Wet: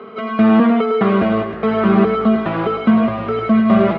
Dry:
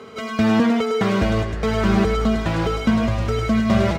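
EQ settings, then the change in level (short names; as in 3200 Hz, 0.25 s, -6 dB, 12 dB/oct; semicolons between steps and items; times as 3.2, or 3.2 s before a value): speaker cabinet 160–3200 Hz, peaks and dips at 210 Hz +8 dB, 390 Hz +7 dB, 690 Hz +6 dB, 1200 Hz +9 dB; 0.0 dB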